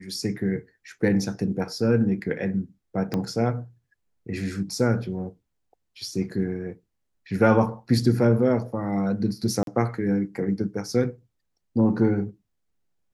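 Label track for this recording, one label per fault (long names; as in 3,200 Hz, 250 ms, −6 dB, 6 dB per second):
3.140000	3.140000	click −14 dBFS
9.630000	9.670000	drop-out 42 ms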